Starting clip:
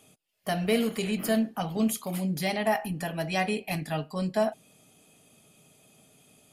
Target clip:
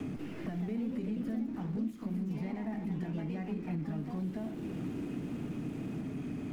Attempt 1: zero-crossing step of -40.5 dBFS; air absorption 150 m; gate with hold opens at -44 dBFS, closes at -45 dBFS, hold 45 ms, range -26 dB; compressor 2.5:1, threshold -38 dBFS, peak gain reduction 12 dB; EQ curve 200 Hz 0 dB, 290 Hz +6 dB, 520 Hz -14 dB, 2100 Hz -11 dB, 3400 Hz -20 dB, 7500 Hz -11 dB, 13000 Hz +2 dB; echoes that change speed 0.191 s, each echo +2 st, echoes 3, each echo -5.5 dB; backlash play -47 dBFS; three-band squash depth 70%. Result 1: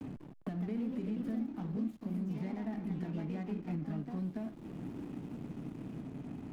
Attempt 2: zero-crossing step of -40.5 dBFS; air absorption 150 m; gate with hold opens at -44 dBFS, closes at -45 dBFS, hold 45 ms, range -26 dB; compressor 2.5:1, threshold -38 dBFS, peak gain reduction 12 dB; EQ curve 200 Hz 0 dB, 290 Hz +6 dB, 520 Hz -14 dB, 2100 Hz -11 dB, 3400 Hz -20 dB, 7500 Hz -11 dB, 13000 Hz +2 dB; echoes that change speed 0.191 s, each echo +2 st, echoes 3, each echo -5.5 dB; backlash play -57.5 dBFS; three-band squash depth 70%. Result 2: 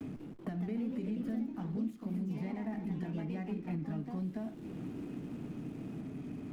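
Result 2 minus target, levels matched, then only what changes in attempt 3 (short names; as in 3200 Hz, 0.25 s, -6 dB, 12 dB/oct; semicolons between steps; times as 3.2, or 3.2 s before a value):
zero-crossing step: distortion -9 dB
change: zero-crossing step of -30.5 dBFS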